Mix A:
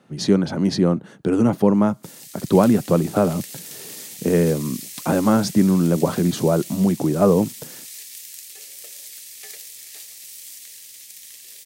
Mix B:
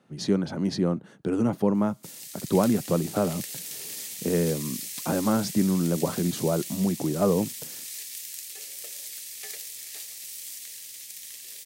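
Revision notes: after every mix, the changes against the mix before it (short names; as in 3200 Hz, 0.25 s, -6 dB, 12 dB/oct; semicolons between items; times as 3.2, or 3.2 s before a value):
speech -7.0 dB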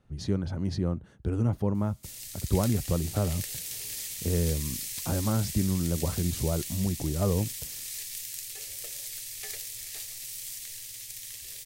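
speech -7.0 dB; master: remove HPF 170 Hz 24 dB/oct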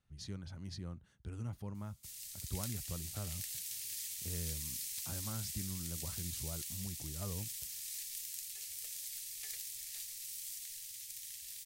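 master: add passive tone stack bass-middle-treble 5-5-5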